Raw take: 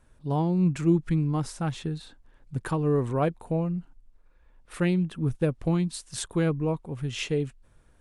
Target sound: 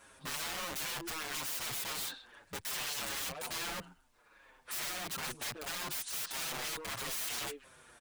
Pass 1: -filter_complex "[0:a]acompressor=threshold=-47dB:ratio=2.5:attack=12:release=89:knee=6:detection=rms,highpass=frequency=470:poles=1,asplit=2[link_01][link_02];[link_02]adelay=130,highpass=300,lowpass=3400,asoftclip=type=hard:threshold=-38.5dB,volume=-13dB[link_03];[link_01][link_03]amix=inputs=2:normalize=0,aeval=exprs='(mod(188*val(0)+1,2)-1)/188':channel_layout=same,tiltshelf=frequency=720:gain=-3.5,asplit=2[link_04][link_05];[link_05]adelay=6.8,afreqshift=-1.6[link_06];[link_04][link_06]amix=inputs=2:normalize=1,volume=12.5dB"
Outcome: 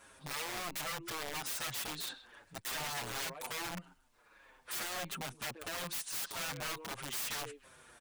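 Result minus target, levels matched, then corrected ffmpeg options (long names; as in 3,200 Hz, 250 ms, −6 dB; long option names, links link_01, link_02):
downward compressor: peak gain reduction +6.5 dB
-filter_complex "[0:a]acompressor=threshold=-36dB:ratio=2.5:attack=12:release=89:knee=6:detection=rms,highpass=frequency=470:poles=1,asplit=2[link_01][link_02];[link_02]adelay=130,highpass=300,lowpass=3400,asoftclip=type=hard:threshold=-38.5dB,volume=-13dB[link_03];[link_01][link_03]amix=inputs=2:normalize=0,aeval=exprs='(mod(188*val(0)+1,2)-1)/188':channel_layout=same,tiltshelf=frequency=720:gain=-3.5,asplit=2[link_04][link_05];[link_05]adelay=6.8,afreqshift=-1.6[link_06];[link_04][link_06]amix=inputs=2:normalize=1,volume=12.5dB"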